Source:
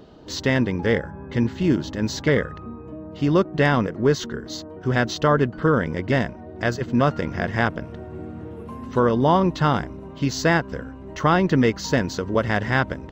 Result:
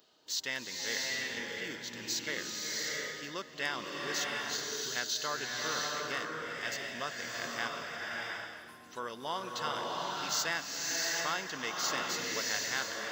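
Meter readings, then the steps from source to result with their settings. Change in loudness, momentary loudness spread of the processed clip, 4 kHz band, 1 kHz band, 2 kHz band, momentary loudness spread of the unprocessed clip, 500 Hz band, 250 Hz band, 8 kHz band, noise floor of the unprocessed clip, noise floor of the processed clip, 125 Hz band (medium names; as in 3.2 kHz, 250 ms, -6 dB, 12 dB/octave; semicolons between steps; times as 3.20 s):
-12.5 dB, 7 LU, -1.0 dB, -13.0 dB, -8.0 dB, 16 LU, -19.0 dB, -24.5 dB, no reading, -39 dBFS, -51 dBFS, -29.5 dB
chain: differentiator; swelling reverb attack 710 ms, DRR -2 dB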